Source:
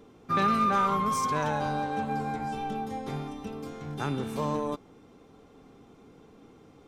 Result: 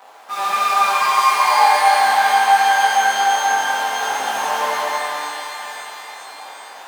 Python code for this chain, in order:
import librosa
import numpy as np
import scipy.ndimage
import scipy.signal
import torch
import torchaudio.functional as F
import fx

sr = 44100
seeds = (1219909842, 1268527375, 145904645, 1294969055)

p1 = fx.fuzz(x, sr, gain_db=52.0, gate_db=-49.0)
p2 = x + (p1 * librosa.db_to_amplitude(-7.0))
p3 = fx.dmg_crackle(p2, sr, seeds[0], per_s=450.0, level_db=-37.0)
p4 = fx.highpass_res(p3, sr, hz=810.0, q=3.7)
p5 = fx.rev_shimmer(p4, sr, seeds[1], rt60_s=3.7, semitones=12, shimmer_db=-8, drr_db=-10.5)
y = p5 * librosa.db_to_amplitude(-13.5)